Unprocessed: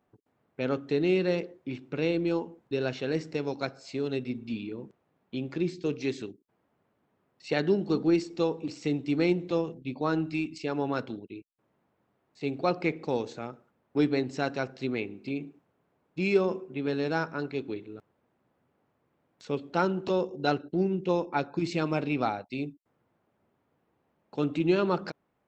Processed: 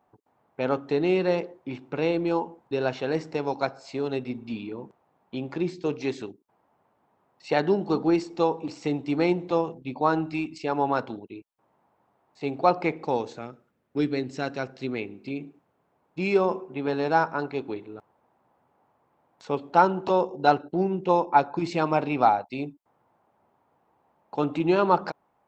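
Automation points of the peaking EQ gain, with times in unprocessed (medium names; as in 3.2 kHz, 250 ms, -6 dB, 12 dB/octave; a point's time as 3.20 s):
peaking EQ 870 Hz 1.1 oct
12.86 s +12 dB
13.34 s +6 dB
13.49 s -4 dB
14.11 s -4 dB
14.88 s +3.5 dB
15.42 s +3.5 dB
16.66 s +13 dB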